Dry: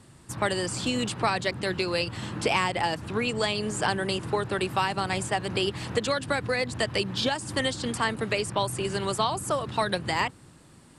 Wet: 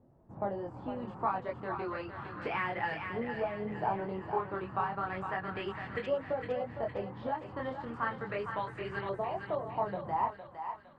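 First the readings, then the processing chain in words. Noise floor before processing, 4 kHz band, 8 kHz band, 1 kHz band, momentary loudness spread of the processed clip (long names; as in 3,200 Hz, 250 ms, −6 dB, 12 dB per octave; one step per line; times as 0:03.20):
−53 dBFS, −23.0 dB, below −40 dB, −5.0 dB, 6 LU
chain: multi-voice chorus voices 4, 0.32 Hz, delay 23 ms, depth 3.6 ms
auto-filter low-pass saw up 0.33 Hz 620–2,000 Hz
feedback echo with a high-pass in the loop 459 ms, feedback 55%, high-pass 920 Hz, level −5 dB
level −7.5 dB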